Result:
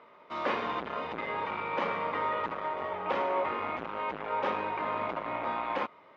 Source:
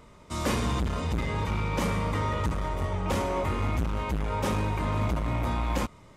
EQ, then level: band-pass 520–3100 Hz; distance through air 210 m; +3.0 dB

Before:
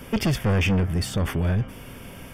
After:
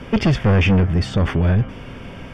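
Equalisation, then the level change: distance through air 140 m; +6.5 dB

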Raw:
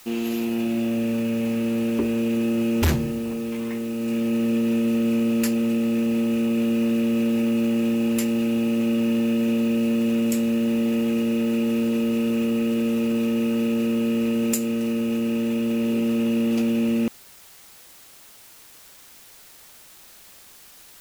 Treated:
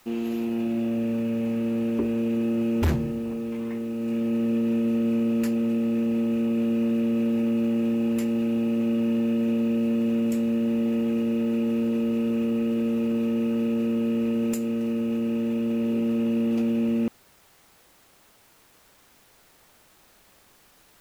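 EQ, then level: treble shelf 2.3 kHz -10.5 dB; -2.0 dB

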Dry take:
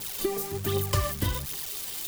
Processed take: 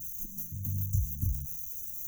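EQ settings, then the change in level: brick-wall FIR band-stop 360–5800 Hz; static phaser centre 970 Hz, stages 4; static phaser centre 2 kHz, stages 8; 0.0 dB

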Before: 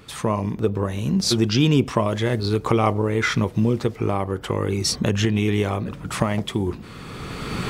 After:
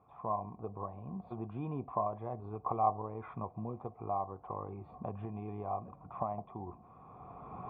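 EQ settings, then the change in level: cascade formant filter a; high-pass 56 Hz; bass shelf 310 Hz +10.5 dB; -2.0 dB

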